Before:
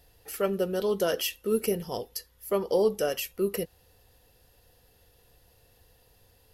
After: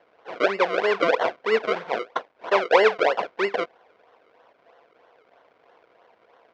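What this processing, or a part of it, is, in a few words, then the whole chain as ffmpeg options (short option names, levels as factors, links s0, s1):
circuit-bent sampling toy: -af "acrusher=samples=35:mix=1:aa=0.000001:lfo=1:lforange=35:lforate=3.1,highpass=430,equalizer=f=480:t=q:w=4:g=5,equalizer=f=680:t=q:w=4:g=8,equalizer=f=1000:t=q:w=4:g=7,equalizer=f=1500:t=q:w=4:g=5,equalizer=f=2200:t=q:w=4:g=5,equalizer=f=4100:t=q:w=4:g=-3,lowpass=f=4400:w=0.5412,lowpass=f=4400:w=1.3066,volume=1.68"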